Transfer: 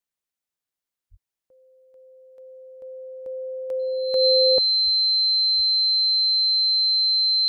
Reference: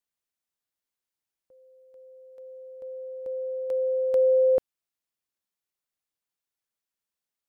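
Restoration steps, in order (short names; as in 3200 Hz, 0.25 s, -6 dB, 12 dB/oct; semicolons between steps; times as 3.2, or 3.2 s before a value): notch 4100 Hz, Q 30; 1.1–1.22 HPF 140 Hz 24 dB/oct; 4.84–4.96 HPF 140 Hz 24 dB/oct; 5.56–5.68 HPF 140 Hz 24 dB/oct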